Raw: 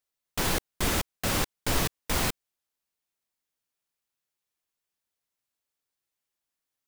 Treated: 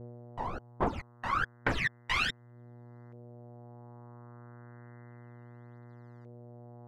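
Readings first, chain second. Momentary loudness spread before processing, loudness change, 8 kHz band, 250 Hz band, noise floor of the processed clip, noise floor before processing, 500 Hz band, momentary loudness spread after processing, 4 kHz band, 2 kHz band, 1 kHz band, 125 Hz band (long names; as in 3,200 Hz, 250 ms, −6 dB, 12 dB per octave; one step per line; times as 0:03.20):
3 LU, −4.5 dB, −21.0 dB, −6.0 dB, −58 dBFS, below −85 dBFS, −4.5 dB, 21 LU, −6.5 dB, +1.0 dB, 0.0 dB, −5.0 dB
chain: phase shifter 1.2 Hz, delay 1.1 ms, feedback 74%
spectral tilt +2.5 dB per octave
hum with harmonics 120 Hz, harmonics 17, −40 dBFS −7 dB per octave
reverb reduction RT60 1.1 s
auto-filter low-pass saw up 0.32 Hz 510–5,100 Hz
level −6.5 dB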